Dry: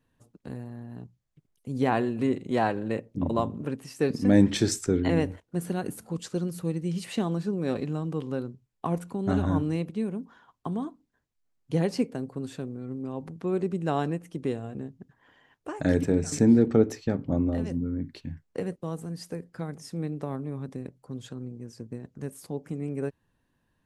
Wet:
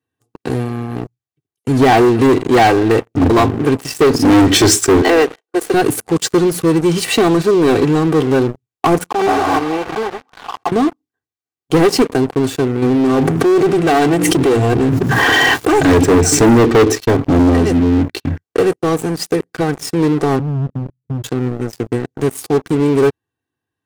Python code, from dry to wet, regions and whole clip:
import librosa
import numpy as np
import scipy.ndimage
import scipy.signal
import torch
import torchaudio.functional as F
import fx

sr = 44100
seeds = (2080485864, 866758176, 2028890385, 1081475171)

y = fx.chain(x, sr, fx.highpass(hz=390.0, slope=24),
    fx.high_shelf(hz=10000.0, db=-11.0), at=(5.01, 5.74))
y = fx.chain(y, sr, fx.block_float(bits=3),
    fx.bandpass_q(hz=850.0, q=1.8),
    fx.pre_swell(db_per_s=48.0), at=(9.1, 10.72))
y = fx.chain(y, sr, fx.hum_notches(base_hz=60, count=5),
    fx.tube_stage(drive_db=29.0, bias=0.6),
    fx.env_flatten(amount_pct=100), at=(12.82, 15.85))
y = fx.chain(y, sr, fx.cheby2_lowpass(hz=710.0, order=4, stop_db=60),
    fx.comb(ms=1.4, depth=0.34), at=(20.39, 21.24))
y = scipy.signal.sosfilt(scipy.signal.butter(4, 90.0, 'highpass', fs=sr, output='sos'), y)
y = y + 0.72 * np.pad(y, (int(2.6 * sr / 1000.0), 0))[:len(y)]
y = fx.leveller(y, sr, passes=5)
y = F.gain(torch.from_numpy(y), 2.0).numpy()